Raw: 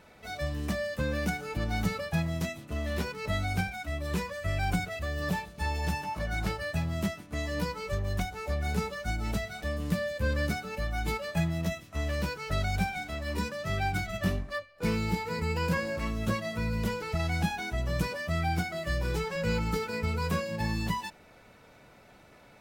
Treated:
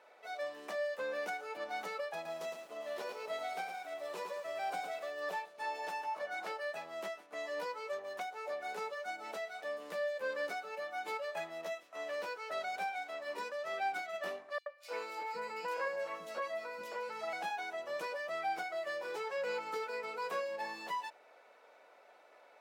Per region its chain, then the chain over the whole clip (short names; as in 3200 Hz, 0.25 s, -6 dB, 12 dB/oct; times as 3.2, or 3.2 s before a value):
2.14–5.12 bell 1800 Hz -6 dB 1.1 oct + lo-fi delay 0.11 s, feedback 35%, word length 8-bit, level -5 dB
14.58–17.33 notch 410 Hz, Q 7.8 + three bands offset in time highs, mids, lows 80/510 ms, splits 280/3000 Hz
whole clip: HPF 520 Hz 24 dB/oct; tilt -3 dB/oct; gain -3 dB